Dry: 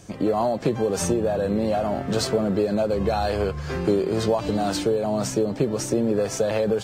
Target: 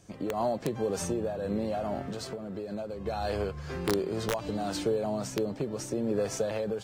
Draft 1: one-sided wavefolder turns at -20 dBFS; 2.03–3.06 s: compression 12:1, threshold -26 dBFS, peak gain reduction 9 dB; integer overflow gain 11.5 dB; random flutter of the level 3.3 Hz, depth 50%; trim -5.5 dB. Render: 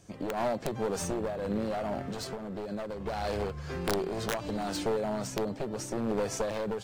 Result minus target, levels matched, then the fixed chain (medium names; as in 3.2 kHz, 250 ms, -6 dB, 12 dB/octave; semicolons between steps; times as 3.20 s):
one-sided wavefolder: distortion +23 dB
one-sided wavefolder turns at -12 dBFS; 2.03–3.06 s: compression 12:1, threshold -26 dBFS, peak gain reduction 10.5 dB; integer overflow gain 11.5 dB; random flutter of the level 3.3 Hz, depth 50%; trim -5.5 dB